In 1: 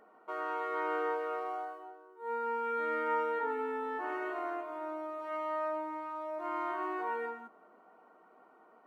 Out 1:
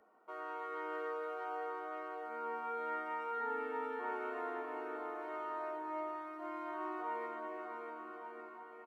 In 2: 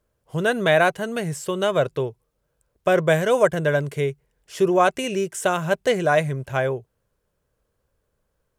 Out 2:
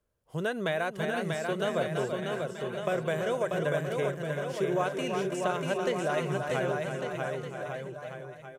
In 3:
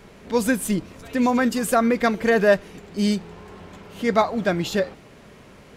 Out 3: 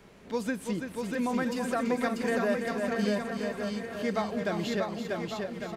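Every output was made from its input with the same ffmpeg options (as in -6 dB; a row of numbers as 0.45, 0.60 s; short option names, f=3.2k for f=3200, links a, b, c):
-filter_complex "[0:a]asplit=2[a][b];[b]aecho=0:1:332:0.335[c];[a][c]amix=inputs=2:normalize=0,acrossover=split=96|6500[d][e][f];[d]acompressor=threshold=-56dB:ratio=4[g];[e]acompressor=threshold=-19dB:ratio=4[h];[f]acompressor=threshold=-49dB:ratio=4[i];[g][h][i]amix=inputs=3:normalize=0,asplit=2[j][k];[k]aecho=0:1:640|1152|1562|1889|2151:0.631|0.398|0.251|0.158|0.1[l];[j][l]amix=inputs=2:normalize=0,volume=-7.5dB"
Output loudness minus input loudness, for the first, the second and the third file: -5.5, -9.5, -9.0 LU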